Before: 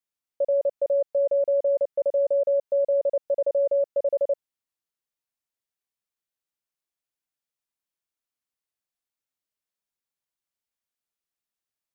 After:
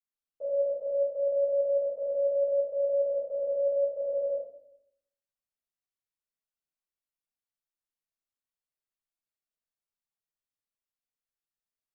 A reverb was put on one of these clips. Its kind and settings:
rectangular room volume 130 cubic metres, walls mixed, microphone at 3.7 metres
level −20 dB

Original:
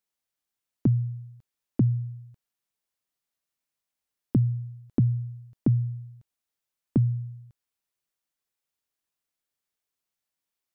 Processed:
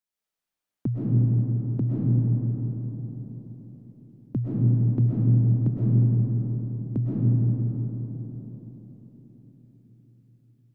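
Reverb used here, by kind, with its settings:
comb and all-pass reverb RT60 4.7 s, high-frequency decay 0.3×, pre-delay 85 ms, DRR −7.5 dB
level −5.5 dB

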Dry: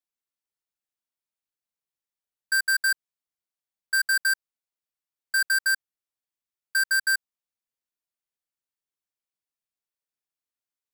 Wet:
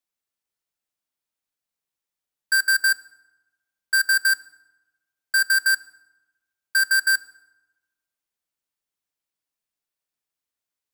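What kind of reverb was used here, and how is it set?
feedback delay network reverb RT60 1.1 s, low-frequency decay 1.1×, high-frequency decay 0.65×, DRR 17 dB
level +4 dB

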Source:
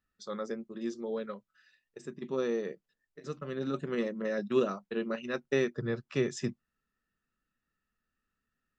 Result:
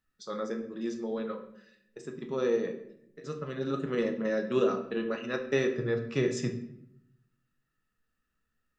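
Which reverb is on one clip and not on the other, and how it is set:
rectangular room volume 180 cubic metres, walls mixed, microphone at 0.56 metres
level +1 dB

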